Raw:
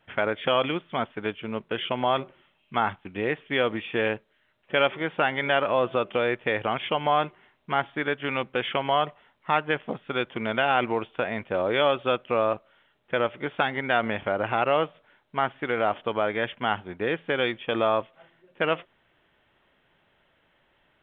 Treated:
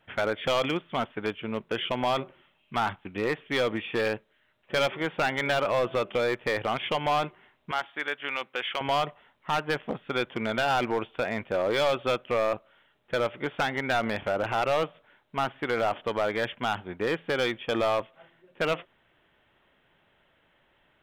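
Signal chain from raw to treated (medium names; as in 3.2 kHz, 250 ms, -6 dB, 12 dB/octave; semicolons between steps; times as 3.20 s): 7.71–8.81 s: high-pass 1.1 kHz 6 dB/octave; hard clipper -20 dBFS, distortion -10 dB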